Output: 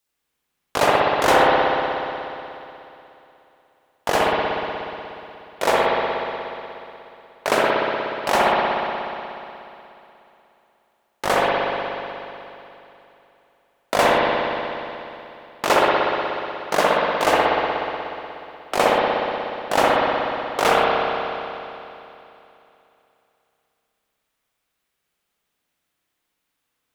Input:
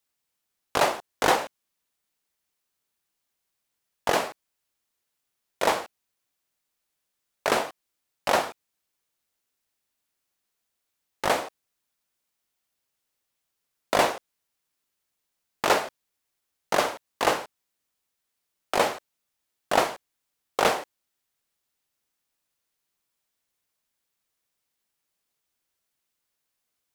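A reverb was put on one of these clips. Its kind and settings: spring tank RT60 3 s, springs 60 ms, chirp 70 ms, DRR -6 dB; trim +1.5 dB

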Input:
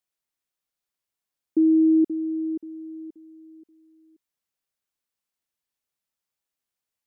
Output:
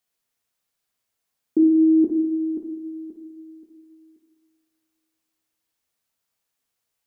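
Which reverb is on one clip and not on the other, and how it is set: two-slope reverb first 0.86 s, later 2.6 s, DRR 1.5 dB; trim +5 dB

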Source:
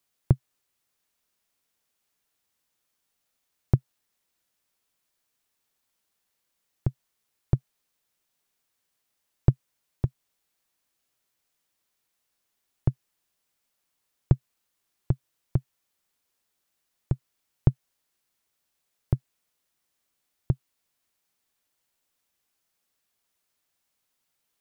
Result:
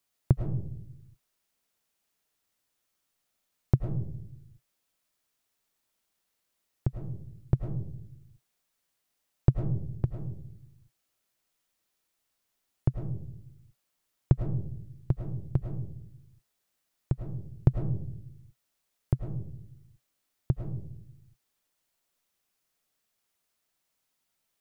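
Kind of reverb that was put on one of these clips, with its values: algorithmic reverb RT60 0.68 s, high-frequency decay 0.25×, pre-delay 65 ms, DRR 5 dB; trim -2 dB

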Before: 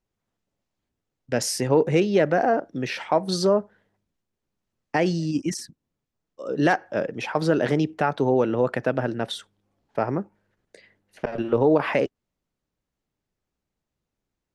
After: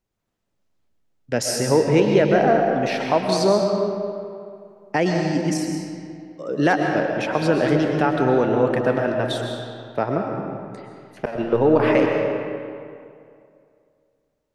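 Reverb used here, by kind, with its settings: algorithmic reverb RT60 2.4 s, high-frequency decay 0.65×, pre-delay 85 ms, DRR 2 dB; trim +1.5 dB

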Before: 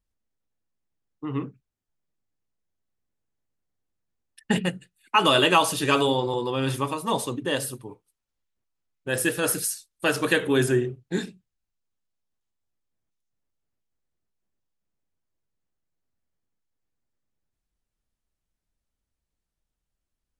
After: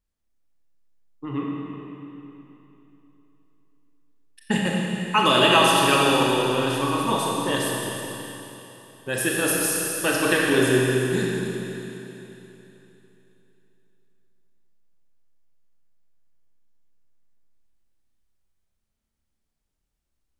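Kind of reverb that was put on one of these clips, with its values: Schroeder reverb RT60 3.3 s, combs from 28 ms, DRR -3 dB; trim -1 dB

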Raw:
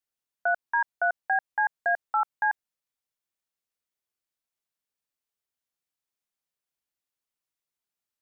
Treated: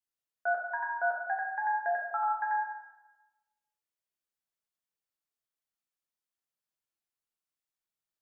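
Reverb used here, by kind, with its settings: plate-style reverb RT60 1.1 s, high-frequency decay 0.6×, DRR -1.5 dB; trim -8 dB

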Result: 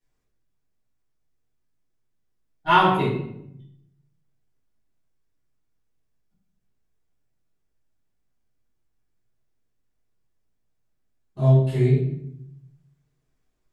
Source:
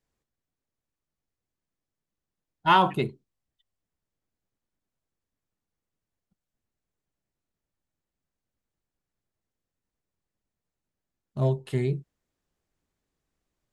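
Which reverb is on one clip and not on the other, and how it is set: simulated room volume 180 m³, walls mixed, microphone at 3.6 m; trim -8.5 dB

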